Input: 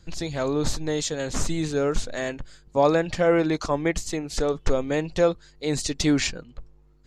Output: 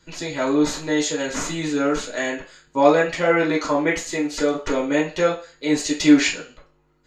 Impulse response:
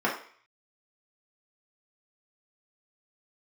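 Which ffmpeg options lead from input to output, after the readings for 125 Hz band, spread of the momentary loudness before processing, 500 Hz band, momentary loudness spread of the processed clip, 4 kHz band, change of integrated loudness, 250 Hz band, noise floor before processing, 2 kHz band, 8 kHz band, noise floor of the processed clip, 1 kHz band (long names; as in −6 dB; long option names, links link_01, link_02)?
−3.5 dB, 9 LU, +2.5 dB, 10 LU, +3.5 dB, +4.5 dB, +6.5 dB, −55 dBFS, +7.5 dB, +3.0 dB, −61 dBFS, +5.0 dB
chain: -filter_complex "[0:a]highshelf=frequency=2100:gain=10.5[link_01];[1:a]atrim=start_sample=2205,asetrate=57330,aresample=44100[link_02];[link_01][link_02]afir=irnorm=-1:irlink=0,volume=-8.5dB"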